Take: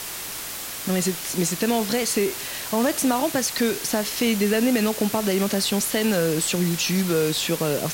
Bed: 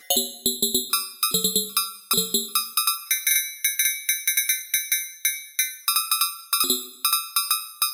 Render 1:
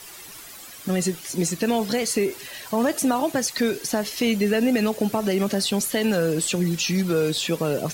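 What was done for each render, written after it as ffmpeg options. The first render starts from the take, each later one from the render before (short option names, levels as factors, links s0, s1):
-af "afftdn=nr=12:nf=-33"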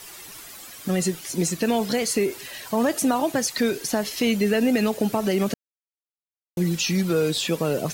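-filter_complex "[0:a]asplit=3[s0][s1][s2];[s0]atrim=end=5.54,asetpts=PTS-STARTPTS,afade=t=out:st=5.536:d=0.004:c=hsin[s3];[s1]atrim=start=5.54:end=6.57,asetpts=PTS-STARTPTS,volume=0[s4];[s2]atrim=start=6.57,asetpts=PTS-STARTPTS,afade=t=in:d=0.004:c=hsin[s5];[s3][s4][s5]concat=n=3:v=0:a=1"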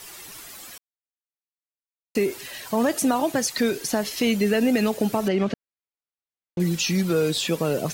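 -filter_complex "[0:a]asettb=1/sr,asplit=3[s0][s1][s2];[s0]atrim=end=5.284[s3];[s1]atrim=start=5.28:end=6.6,asetpts=PTS-STARTPTS,afade=t=in:d=0.004:c=qsin,afade=t=out:st=1.316:d=0.004:c=qsin,lowpass=3500[s4];[s2]atrim=start=6.596[s5];[s3][s4]acrossfade=d=0.004:c1=hsin:c2=qsin[s6];[s6][s5]acrossfade=d=0.004:c1=qsin:c2=hsin,asplit=3[s7][s8][s9];[s7]atrim=end=0.78,asetpts=PTS-STARTPTS,afade=t=out:st=0.776:d=0.004:c=hsin[s10];[s8]atrim=start=0.78:end=2.15,asetpts=PTS-STARTPTS,volume=0[s11];[s9]atrim=start=2.15,asetpts=PTS-STARTPTS,afade=t=in:d=0.004:c=hsin[s12];[s10][s11][s12]concat=n=3:v=0:a=1"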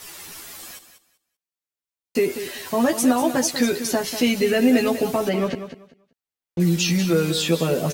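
-filter_complex "[0:a]asplit=2[s0][s1];[s1]adelay=12,volume=0.794[s2];[s0][s2]amix=inputs=2:normalize=0,asplit=2[s3][s4];[s4]aecho=0:1:193|386|579:0.282|0.0564|0.0113[s5];[s3][s5]amix=inputs=2:normalize=0"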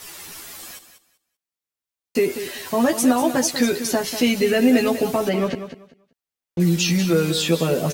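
-af "volume=1.12"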